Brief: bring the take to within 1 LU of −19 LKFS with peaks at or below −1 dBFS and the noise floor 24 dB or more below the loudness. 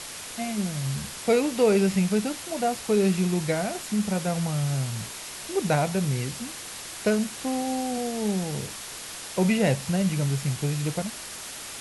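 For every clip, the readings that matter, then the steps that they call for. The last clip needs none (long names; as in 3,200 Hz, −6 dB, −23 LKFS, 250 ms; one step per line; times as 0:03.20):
background noise floor −39 dBFS; target noise floor −51 dBFS; integrated loudness −26.5 LKFS; sample peak −11.0 dBFS; target loudness −19.0 LKFS
→ broadband denoise 12 dB, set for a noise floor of −39 dBFS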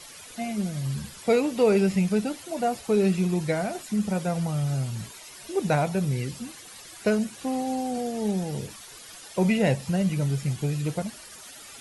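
background noise floor −45 dBFS; target noise floor −51 dBFS
→ broadband denoise 6 dB, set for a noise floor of −45 dBFS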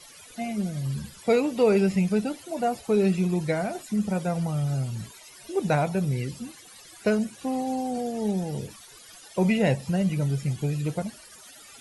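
background noise floor −49 dBFS; target noise floor −51 dBFS
→ broadband denoise 6 dB, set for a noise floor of −49 dBFS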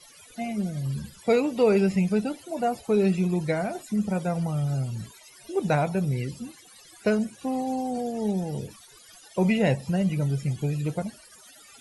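background noise floor −52 dBFS; integrated loudness −26.5 LKFS; sample peak −11.5 dBFS; target loudness −19.0 LKFS
→ level +7.5 dB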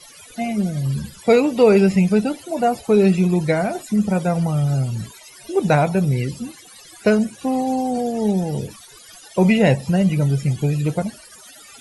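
integrated loudness −19.0 LKFS; sample peak −4.0 dBFS; background noise floor −44 dBFS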